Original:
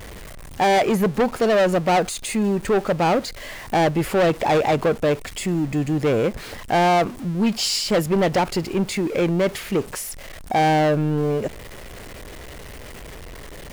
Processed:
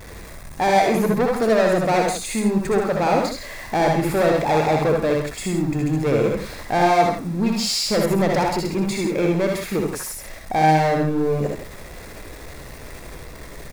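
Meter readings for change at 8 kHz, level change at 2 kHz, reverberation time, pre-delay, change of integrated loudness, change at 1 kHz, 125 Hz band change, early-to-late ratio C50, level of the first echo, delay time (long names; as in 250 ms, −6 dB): +0.5 dB, +0.5 dB, no reverb audible, no reverb audible, +0.5 dB, +1.0 dB, +0.5 dB, no reverb audible, −5.0 dB, 63 ms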